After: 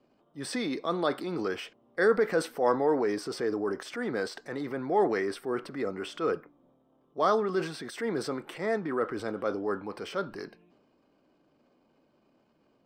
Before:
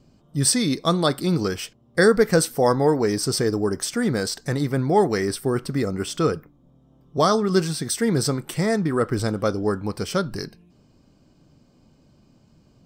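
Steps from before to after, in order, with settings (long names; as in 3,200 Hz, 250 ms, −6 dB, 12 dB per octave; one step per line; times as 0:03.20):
transient designer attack −6 dB, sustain +5 dB
three-way crossover with the lows and the highs turned down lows −21 dB, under 270 Hz, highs −18 dB, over 3,200 Hz
level −4 dB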